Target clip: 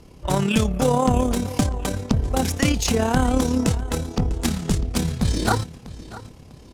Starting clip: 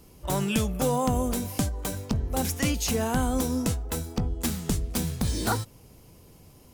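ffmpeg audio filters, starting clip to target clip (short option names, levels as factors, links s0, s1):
-af "aecho=1:1:648|1296|1944:0.141|0.0509|0.0183,tremolo=f=35:d=0.519,adynamicsmooth=sensitivity=7:basefreq=6600,volume=2.66"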